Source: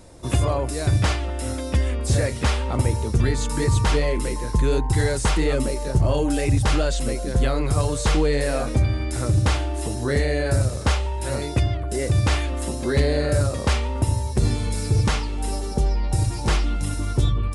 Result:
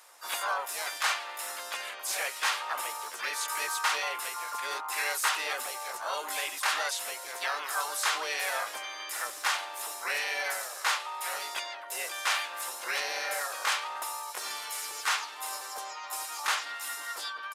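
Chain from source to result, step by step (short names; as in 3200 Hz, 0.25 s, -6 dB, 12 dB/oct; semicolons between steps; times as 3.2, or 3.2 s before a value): ladder high-pass 800 Hz, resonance 30%; harmoniser -4 st -15 dB, +5 st -1 dB; gain +2.5 dB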